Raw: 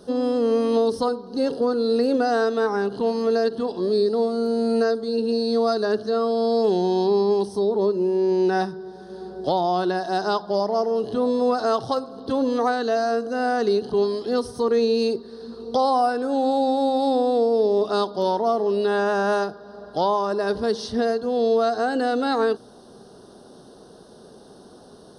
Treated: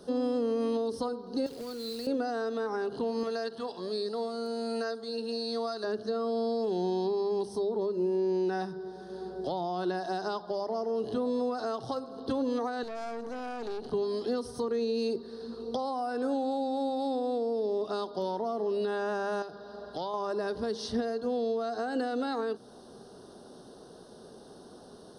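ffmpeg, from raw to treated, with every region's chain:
-filter_complex "[0:a]asettb=1/sr,asplit=3[a][b][c];[a]atrim=end=1.464[d];[b]atrim=start=1.46:end=2.07,asetpts=PTS-STARTPTS,afade=t=in:d=0.004:c=qsin,afade=t=out:st=0.606:d=0.004:c=qsin,acrossover=split=120|3000[e][f][g];[f]acompressor=threshold=-34dB:ratio=8:attack=3.2:release=140:knee=2.83:detection=peak[h];[e][h][g]amix=inputs=3:normalize=0,acrusher=bits=3:mode=log:mix=0:aa=0.000001[i];[c]atrim=start=2.066[j];[d][i]acrossfade=d=0.004:c1=hsin:c2=qsin[k];[k][j]acrossfade=d=0.004:c1=qsin:c2=hsin,asettb=1/sr,asplit=3[l][m][n];[l]atrim=end=3.234[o];[m]atrim=start=3.23:end=5.84,asetpts=PTS-STARTPTS,afade=t=in:d=0.004:c=qsin,afade=t=out:st=2.606:d=0.004:c=qsin,highpass=f=180:p=1,equalizer=f=320:t=o:w=1.4:g=-11.5[p];[n]atrim=start=5.836[q];[o][p]acrossfade=d=0.004:c1=hsin:c2=qsin[r];[r][q]acrossfade=d=0.004:c1=qsin:c2=hsin,asettb=1/sr,asplit=3[s][t][u];[s]atrim=end=12.834[v];[t]atrim=start=12.83:end=13.92,asetpts=PTS-STARTPTS,afade=t=in:d=0.004:c=qsin,afade=t=out:st=1.086:d=0.004:c=qsin,acompressor=threshold=-27dB:ratio=2.5:attack=3.2:release=140:knee=1:detection=peak,aeval=exprs='(tanh(28.2*val(0)+0.75)-tanh(0.75))/28.2':c=same[w];[u]atrim=start=13.916[x];[v][w]acrossfade=d=0.004:c1=hsin:c2=qsin[y];[y][x]acrossfade=d=0.004:c1=qsin:c2=hsin,asettb=1/sr,asplit=3[z][aa][ab];[z]atrim=end=19.424[ac];[aa]atrim=start=19.42:end=20.14,asetpts=PTS-STARTPTS,afade=t=in:d=0.004:c=qsin,afade=t=out:st=0.716:d=0.004:c=qsin,equalizer=f=3.8k:t=o:w=1:g=5,acompressor=threshold=-32dB:ratio=2.5:attack=3.2:release=140:knee=1:detection=peak[ad];[ab]atrim=start=20.136[ae];[ac][ad]acrossfade=d=0.004:c1=hsin:c2=qsin[af];[af][ae]acrossfade=d=0.004:c1=qsin:c2=hsin,alimiter=limit=-18dB:level=0:latency=1:release=212,bandreject=f=50:t=h:w=6,bandreject=f=100:t=h:w=6,bandreject=f=150:t=h:w=6,bandreject=f=200:t=h:w=6,acrossover=split=340[ag][ah];[ah]acompressor=threshold=-27dB:ratio=6[ai];[ag][ai]amix=inputs=2:normalize=0,volume=-3.5dB"

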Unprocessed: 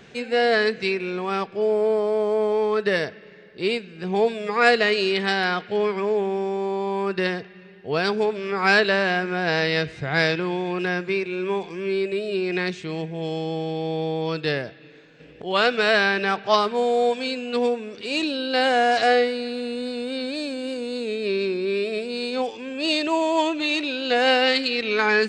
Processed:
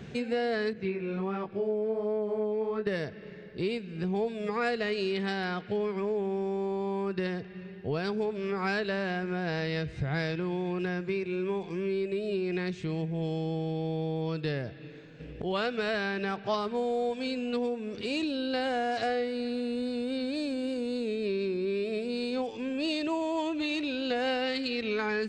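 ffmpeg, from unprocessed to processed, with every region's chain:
-filter_complex "[0:a]asettb=1/sr,asplit=3[a][b][c];[a]atrim=end=0.734[d];[b]atrim=start=0.73:end=2.87,asetpts=PTS-STARTPTS,afade=t=in:d=0.004:c=qsin,afade=t=out:st=2.136:d=0.004:c=qsin,acrossover=split=3300[e][f];[f]acompressor=threshold=-48dB:ratio=4:attack=1:release=60[g];[e][g]amix=inputs=2:normalize=0,flanger=delay=18.5:depth=5.6:speed=1.4,highshelf=f=5.2k:g=-11.5[h];[c]atrim=start=2.866[i];[d][h]acrossfade=d=0.004:c1=hsin:c2=qsin[j];[j][i]acrossfade=d=0.004:c1=qsin:c2=hsin,equalizer=f=99:w=0.36:g=14,acompressor=threshold=-26dB:ratio=3,asubboost=boost=3:cutoff=67,volume=-3.5dB"

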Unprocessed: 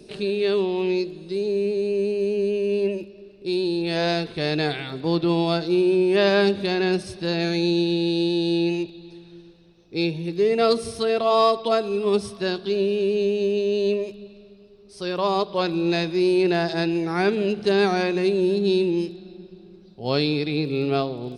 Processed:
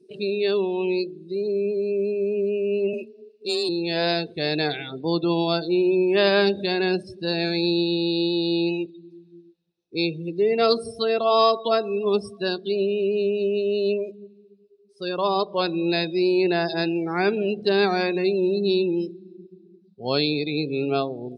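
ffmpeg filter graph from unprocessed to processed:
-filter_complex "[0:a]asettb=1/sr,asplit=3[a][b][c];[a]atrim=end=2.934[d];[b]atrim=start=2.93:end=3.69,asetpts=PTS-STARTPTS,afade=t=in:d=0.004:c=qsin,afade=t=out:st=0.756:d=0.004:c=qsin,highshelf=f=2.2k:g=11.5,asoftclip=type=hard:threshold=-21.5dB,afreqshift=25[e];[c]atrim=start=3.686[f];[d][e]acrossfade=d=0.004:c1=hsin:c2=qsin[g];[g][f]acrossfade=d=0.004:c1=qsin:c2=hsin,afftdn=nr=26:nf=-33,highpass=f=180:p=1,highshelf=f=5.3k:g=9"

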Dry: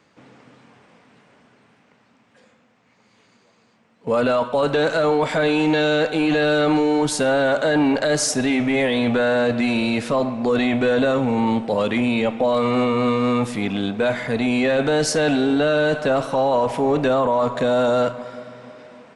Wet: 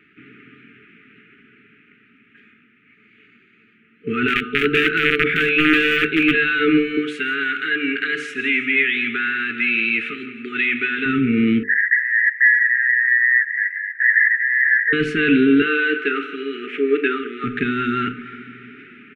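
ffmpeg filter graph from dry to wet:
-filter_complex "[0:a]asettb=1/sr,asplit=3[a][b][c];[a]atrim=end=4.284[d];[b]atrim=start=4.28:end=6.35,asetpts=PTS-STARTPTS,afade=t=in:d=0.004:c=qsin,afade=t=out:st=2.066:d=0.004:c=qsin,bandreject=f=60:t=h:w=6,bandreject=f=120:t=h:w=6,bandreject=f=180:t=h:w=6,bandreject=f=240:t=h:w=6,bandreject=f=300:t=h:w=6,bandreject=f=360:t=h:w=6,acrossover=split=6300[e][f];[f]acompressor=threshold=-59dB:ratio=4:attack=1:release=60[g];[e][g]amix=inputs=2:normalize=0,aeval=exprs='(mod(3.98*val(0)+1,2)-1)/3.98':c=same[h];[c]atrim=start=6.346[i];[d][h]acrossfade=d=0.004:c1=hsin:c2=qsin[j];[j][i]acrossfade=d=0.004:c1=qsin:c2=hsin,asettb=1/sr,asplit=3[k][l][m];[k]atrim=end=6.974[n];[l]atrim=start=6.97:end=11.06,asetpts=PTS-STARTPTS,afade=t=in:d=0.004:c=qsin,afade=t=out:st=4.086:d=0.004:c=qsin,highpass=f=1.1k:p=1,aecho=1:1:166|332|498|664:0.178|0.0818|0.0376|0.0173,atrim=end_sample=180369[o];[m]atrim=start=11.056[p];[n][o]acrossfade=d=0.004:c1=hsin:c2=qsin[q];[q][p]acrossfade=d=0.004:c1=qsin:c2=hsin,asettb=1/sr,asplit=3[r][s][t];[r]atrim=end=11.634[u];[s]atrim=start=11.63:end=14.93,asetpts=PTS-STARTPTS,afade=t=in:d=0.004:c=qsin,afade=t=out:st=3.296:d=0.004:c=qsin,aeval=exprs='0.299*sin(PI/2*3.98*val(0)/0.299)':c=same,asuperpass=centerf=1800:order=8:qfactor=5.5[v];[t]atrim=start=14.926[w];[u][v]acrossfade=d=0.004:c1=hsin:c2=qsin[x];[x][w]acrossfade=d=0.004:c1=qsin:c2=hsin,asettb=1/sr,asplit=3[y][z][aa];[y]atrim=end=15.624[ab];[z]atrim=start=15.62:end=17.44,asetpts=PTS-STARTPTS,afade=t=in:d=0.004:c=qsin,afade=t=out:st=1.816:d=0.004:c=qsin,highpass=f=320:w=0.5412,highpass=f=320:w=1.3066,adynamicsmooth=sensitivity=5.5:basefreq=7.4k,asplit=2[ac][ad];[ad]adelay=36,volume=-13dB[ae];[ac][ae]amix=inputs=2:normalize=0,atrim=end_sample=80262[af];[aa]atrim=start=17.436[ag];[ab][af]acrossfade=d=0.004:c1=hsin:c2=qsin[ah];[ah][ag]acrossfade=d=0.004:c1=qsin:c2=hsin,bandreject=f=50:t=h:w=6,bandreject=f=100:t=h:w=6,bandreject=f=150:t=h:w=6,bandreject=f=200:t=h:w=6,bandreject=f=250:t=h:w=6,bandreject=f=300:t=h:w=6,bandreject=f=350:t=h:w=6,bandreject=f=400:t=h:w=6,bandreject=f=450:t=h:w=6,afftfilt=real='re*(1-between(b*sr/4096,460,1200))':imag='im*(1-between(b*sr/4096,460,1200))':win_size=4096:overlap=0.75,firequalizer=gain_entry='entry(110,0);entry(280,6);entry(930,0);entry(1700,8);entry(2500,12);entry(4800,-23)':delay=0.05:min_phase=1"

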